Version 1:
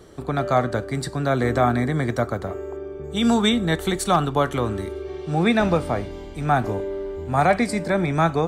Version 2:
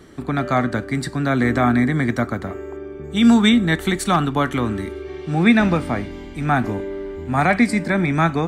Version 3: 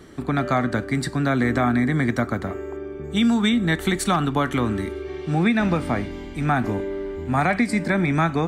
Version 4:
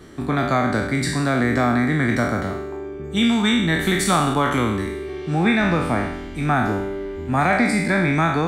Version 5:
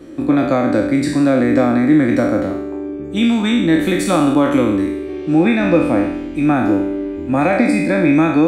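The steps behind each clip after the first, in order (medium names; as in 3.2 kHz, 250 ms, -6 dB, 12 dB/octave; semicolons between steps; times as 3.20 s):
graphic EQ 250/500/2000 Hz +8/-5/+7 dB
compression, threshold -16 dBFS, peak gain reduction 7.5 dB
spectral sustain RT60 0.87 s
small resonant body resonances 310/520/2500 Hz, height 18 dB, ringing for 60 ms; trim -2.5 dB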